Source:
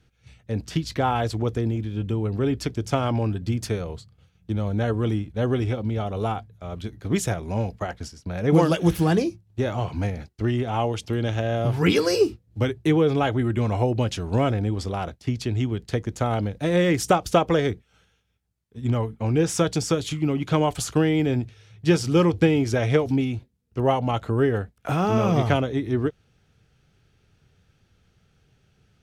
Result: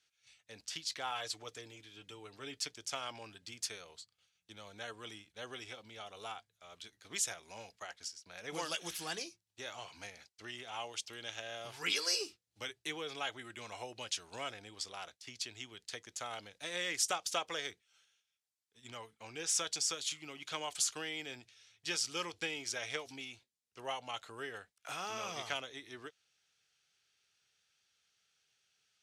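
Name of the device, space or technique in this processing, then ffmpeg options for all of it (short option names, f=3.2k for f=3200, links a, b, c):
piezo pickup straight into a mixer: -filter_complex "[0:a]lowpass=7.1k,aderivative,equalizer=f=210:w=0.63:g=-4,asettb=1/sr,asplit=3[a][b][c];[a]atrim=end=1.114[d];[b]atrim=start=1.11:end=2.73,asetpts=PTS-STARTPTS,afade=t=in:d=0.004:c=qsin,afade=t=out:st=1.616:d=0.004:c=qsin,aecho=1:1:6.7:0.46,atrim=end_sample=71442[e];[c]atrim=start=2.726[f];[d][e]acrossfade=d=0.004:c1=hsin:c2=qsin[g];[g][f]acrossfade=d=0.004:c1=qsin:c2=hsin,volume=2dB"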